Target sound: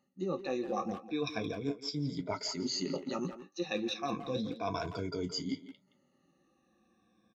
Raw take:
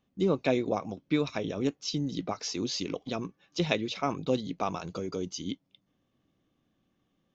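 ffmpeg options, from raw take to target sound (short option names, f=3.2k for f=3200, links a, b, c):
-filter_complex "[0:a]afftfilt=real='re*pow(10,20/40*sin(2*PI*(1.7*log(max(b,1)*sr/1024/100)/log(2)-(-0.33)*(pts-256)/sr)))':imag='im*pow(10,20/40*sin(2*PI*(1.7*log(max(b,1)*sr/1024/100)/log(2)-(-0.33)*(pts-256)/sr)))':win_size=1024:overlap=0.75,aresample=22050,aresample=44100,flanger=delay=9:depth=6.4:regen=-52:speed=0.83:shape=sinusoidal,highpass=84,bandreject=f=3.1k:w=5.1,areverse,acompressor=threshold=-37dB:ratio=6,areverse,asplit=2[a][b];[b]adelay=170,highpass=300,lowpass=3.4k,asoftclip=type=hard:threshold=-37dB,volume=-9dB[c];[a][c]amix=inputs=2:normalize=0,volume=4.5dB"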